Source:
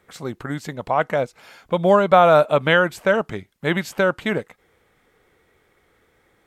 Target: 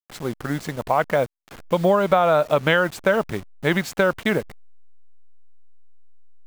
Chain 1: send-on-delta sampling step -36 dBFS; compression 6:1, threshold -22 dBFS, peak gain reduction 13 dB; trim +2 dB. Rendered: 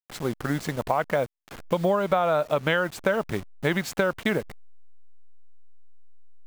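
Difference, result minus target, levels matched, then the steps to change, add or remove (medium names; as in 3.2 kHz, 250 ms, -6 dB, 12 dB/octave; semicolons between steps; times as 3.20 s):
compression: peak gain reduction +5.5 dB
change: compression 6:1, threshold -15.5 dBFS, peak gain reduction 7.5 dB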